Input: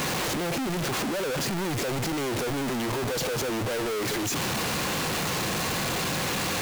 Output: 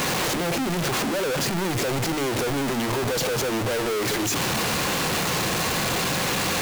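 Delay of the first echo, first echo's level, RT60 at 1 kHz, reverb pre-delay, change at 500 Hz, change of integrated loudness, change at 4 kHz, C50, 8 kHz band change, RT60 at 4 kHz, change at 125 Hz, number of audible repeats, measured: no echo audible, no echo audible, no reverb audible, no reverb audible, +4.0 dB, +4.0 dB, +4.0 dB, no reverb audible, +4.0 dB, no reverb audible, +3.0 dB, no echo audible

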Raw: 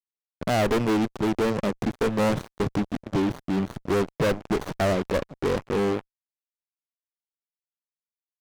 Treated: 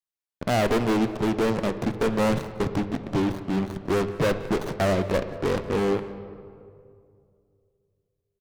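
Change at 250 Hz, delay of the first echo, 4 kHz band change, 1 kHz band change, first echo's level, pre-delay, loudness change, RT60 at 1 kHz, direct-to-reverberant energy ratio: +0.5 dB, 182 ms, +0.5 dB, +0.5 dB, −22.0 dB, 7 ms, +0.5 dB, 2.1 s, 9.5 dB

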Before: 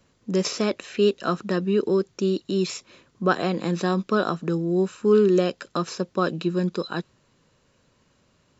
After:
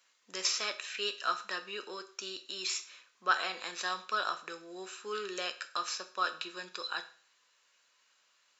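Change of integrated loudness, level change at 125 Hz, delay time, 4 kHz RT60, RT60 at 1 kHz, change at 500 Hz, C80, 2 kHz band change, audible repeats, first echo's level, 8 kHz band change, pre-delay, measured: −11.5 dB, below −35 dB, no echo audible, 0.45 s, 0.45 s, −21.0 dB, 18.0 dB, −2.5 dB, no echo audible, no echo audible, can't be measured, 8 ms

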